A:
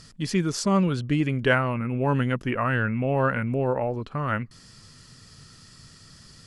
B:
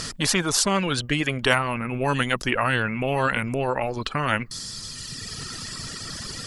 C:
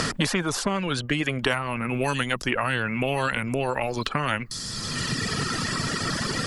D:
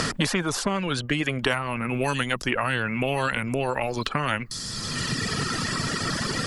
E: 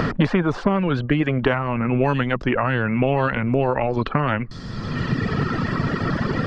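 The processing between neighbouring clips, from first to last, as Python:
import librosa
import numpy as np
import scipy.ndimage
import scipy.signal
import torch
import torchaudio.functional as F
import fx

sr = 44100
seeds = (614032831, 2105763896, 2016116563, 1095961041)

y1 = fx.dereverb_blind(x, sr, rt60_s=1.6)
y1 = fx.spectral_comp(y1, sr, ratio=2.0)
y1 = y1 * 10.0 ** (7.0 / 20.0)
y2 = fx.band_squash(y1, sr, depth_pct=100)
y2 = y2 * 10.0 ** (-2.5 / 20.0)
y3 = y2
y4 = fx.spacing_loss(y3, sr, db_at_10k=43)
y4 = y4 * 10.0 ** (8.5 / 20.0)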